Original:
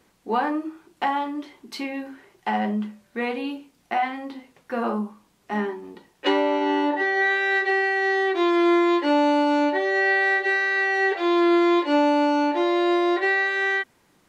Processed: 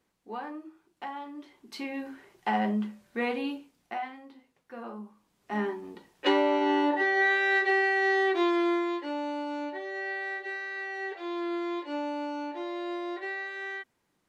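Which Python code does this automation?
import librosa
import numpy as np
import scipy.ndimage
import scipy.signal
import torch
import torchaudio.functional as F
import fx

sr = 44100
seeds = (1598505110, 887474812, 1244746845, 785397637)

y = fx.gain(x, sr, db=fx.line((1.14, -14.5), (2.09, -3.0), (3.47, -3.0), (4.26, -15.5), (4.96, -15.5), (5.68, -3.0), (8.33, -3.0), (9.11, -14.0)))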